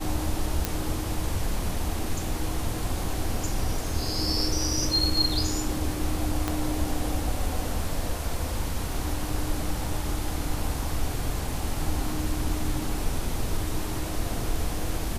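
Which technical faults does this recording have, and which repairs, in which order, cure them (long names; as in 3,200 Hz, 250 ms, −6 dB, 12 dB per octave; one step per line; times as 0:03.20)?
0:00.65: click
0:06.48: click −11 dBFS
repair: click removal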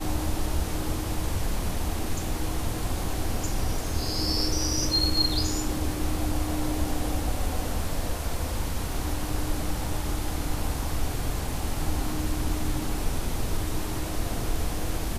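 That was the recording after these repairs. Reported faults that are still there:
0:06.48: click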